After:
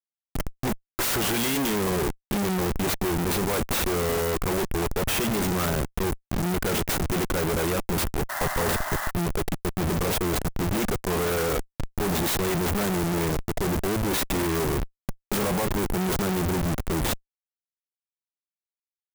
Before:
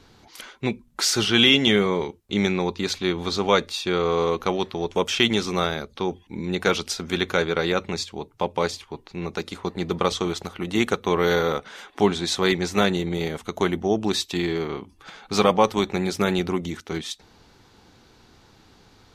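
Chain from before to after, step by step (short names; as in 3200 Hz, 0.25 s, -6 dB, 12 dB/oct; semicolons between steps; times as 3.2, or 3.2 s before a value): Schmitt trigger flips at -31.5 dBFS; painted sound noise, 8.29–9.11, 570–2100 Hz -31 dBFS; clock jitter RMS 0.059 ms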